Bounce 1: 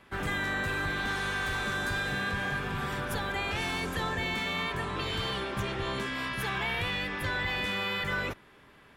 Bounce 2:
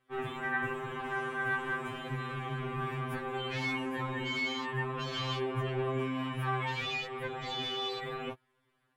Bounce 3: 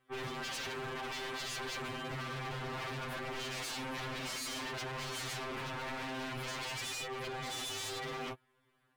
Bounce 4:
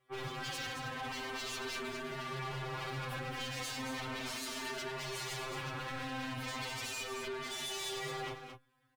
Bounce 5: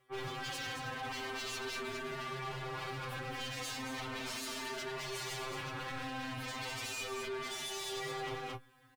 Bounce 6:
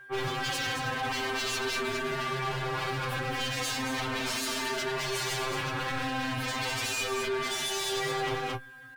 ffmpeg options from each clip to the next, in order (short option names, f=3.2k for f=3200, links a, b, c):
-af "afwtdn=0.0141,aexciter=amount=2.1:drive=2.5:freq=8.2k,afftfilt=real='re*2.45*eq(mod(b,6),0)':imag='im*2.45*eq(mod(b,6),0)':win_size=2048:overlap=0.75"
-af "aeval=exprs='0.015*(abs(mod(val(0)/0.015+3,4)-2)-1)':c=same,volume=1dB"
-filter_complex "[0:a]asplit=2[a][b];[b]aecho=0:1:222:0.422[c];[a][c]amix=inputs=2:normalize=0,asplit=2[d][e];[e]adelay=3.1,afreqshift=-0.37[f];[d][f]amix=inputs=2:normalize=1,volume=2dB"
-filter_complex "[0:a]areverse,acompressor=threshold=-50dB:ratio=4,areverse,asplit=2[a][b];[b]adelay=18,volume=-10.5dB[c];[a][c]amix=inputs=2:normalize=0,volume=9.5dB"
-af "aeval=exprs='val(0)+0.00158*sin(2*PI*1600*n/s)':c=same,volume=9dB"